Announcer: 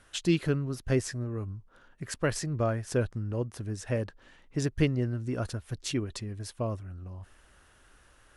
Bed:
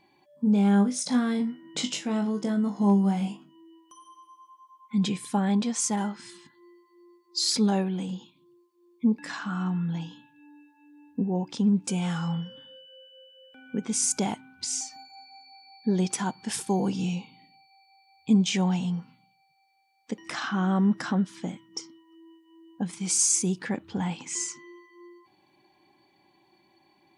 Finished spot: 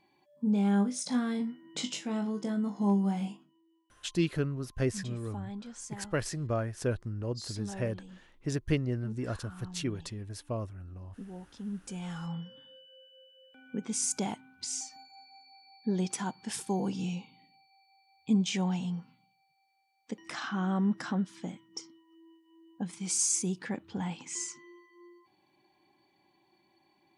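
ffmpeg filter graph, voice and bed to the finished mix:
-filter_complex "[0:a]adelay=3900,volume=-3dB[a];[1:a]volume=6dB,afade=t=out:st=3.24:d=0.38:silence=0.266073,afade=t=in:st=11.62:d=1.09:silence=0.266073[b];[a][b]amix=inputs=2:normalize=0"

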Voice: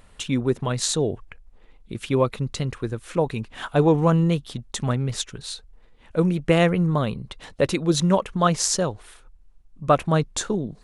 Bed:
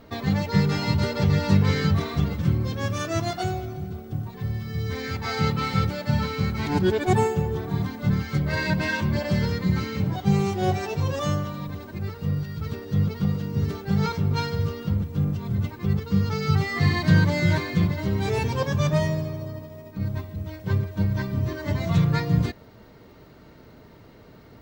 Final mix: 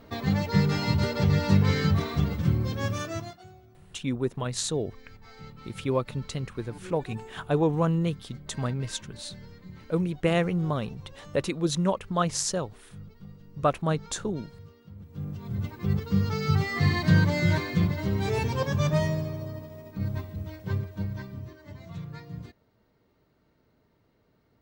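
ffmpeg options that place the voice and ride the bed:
-filter_complex "[0:a]adelay=3750,volume=-6dB[a];[1:a]volume=18dB,afade=t=out:st=2.89:d=0.49:silence=0.0944061,afade=t=in:st=14.95:d=0.98:silence=0.1,afade=t=out:st=20.26:d=1.32:silence=0.158489[b];[a][b]amix=inputs=2:normalize=0"

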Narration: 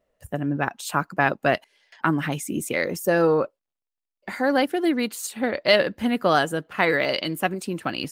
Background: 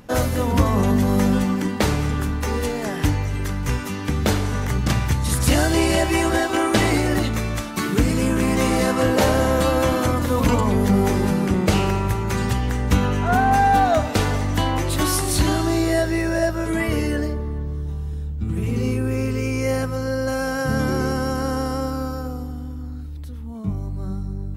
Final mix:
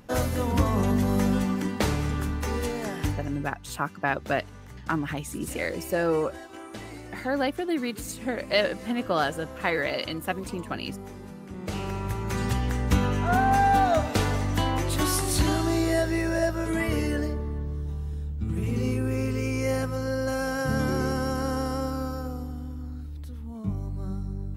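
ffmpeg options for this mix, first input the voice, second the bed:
-filter_complex "[0:a]adelay=2850,volume=-5.5dB[a];[1:a]volume=12dB,afade=t=out:st=2.83:d=0.75:silence=0.149624,afade=t=in:st=11.47:d=1.09:silence=0.133352[b];[a][b]amix=inputs=2:normalize=0"

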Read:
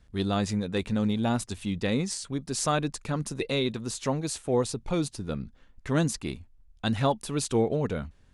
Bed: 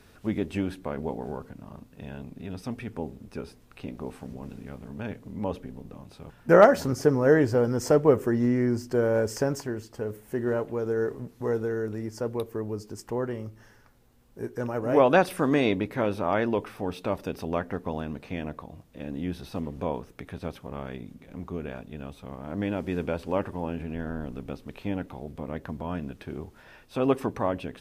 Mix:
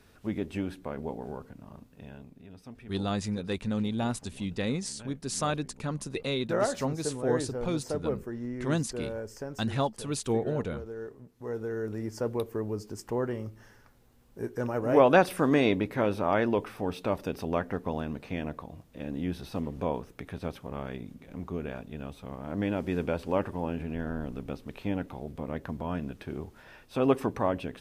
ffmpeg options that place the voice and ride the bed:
-filter_complex "[0:a]adelay=2750,volume=-3.5dB[a];[1:a]volume=8dB,afade=t=out:st=1.85:d=0.62:silence=0.375837,afade=t=in:st=11.34:d=0.75:silence=0.251189[b];[a][b]amix=inputs=2:normalize=0"

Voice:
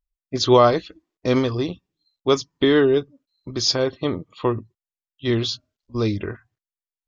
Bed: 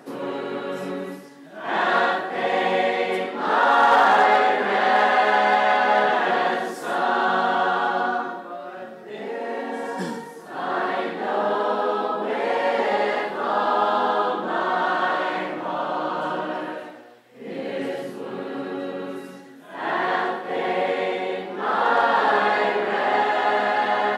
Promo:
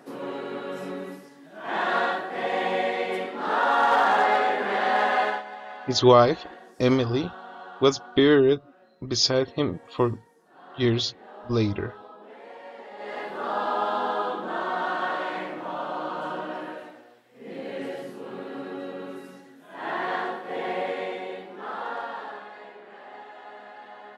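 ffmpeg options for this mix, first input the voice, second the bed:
-filter_complex "[0:a]adelay=5550,volume=-1.5dB[a];[1:a]volume=11dB,afade=t=out:st=5.23:d=0.2:silence=0.149624,afade=t=in:st=12.96:d=0.4:silence=0.16788,afade=t=out:st=20.74:d=1.73:silence=0.133352[b];[a][b]amix=inputs=2:normalize=0"

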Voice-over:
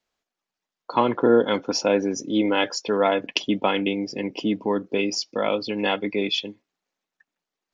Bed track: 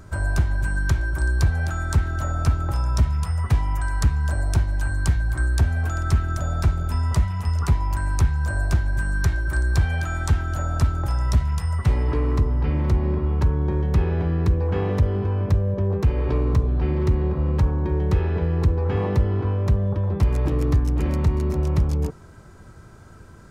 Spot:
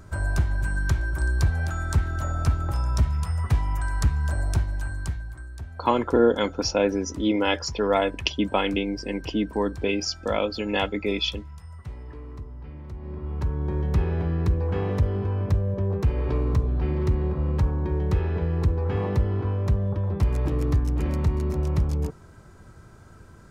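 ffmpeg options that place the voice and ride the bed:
-filter_complex "[0:a]adelay=4900,volume=-1.5dB[a];[1:a]volume=12.5dB,afade=t=out:st=4.46:d=0.97:silence=0.16788,afade=t=in:st=12.95:d=0.91:silence=0.177828[b];[a][b]amix=inputs=2:normalize=0"

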